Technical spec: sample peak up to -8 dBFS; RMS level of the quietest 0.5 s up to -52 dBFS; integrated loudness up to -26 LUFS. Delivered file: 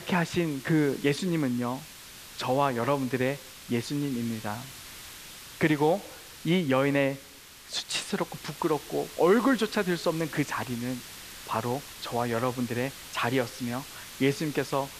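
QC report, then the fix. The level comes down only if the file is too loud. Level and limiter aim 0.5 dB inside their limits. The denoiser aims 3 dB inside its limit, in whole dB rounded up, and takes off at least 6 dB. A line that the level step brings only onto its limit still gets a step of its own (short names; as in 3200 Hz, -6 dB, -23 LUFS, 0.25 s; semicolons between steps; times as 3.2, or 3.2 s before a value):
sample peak -9.5 dBFS: OK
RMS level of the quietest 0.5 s -49 dBFS: fail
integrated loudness -28.5 LUFS: OK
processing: denoiser 6 dB, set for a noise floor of -49 dBFS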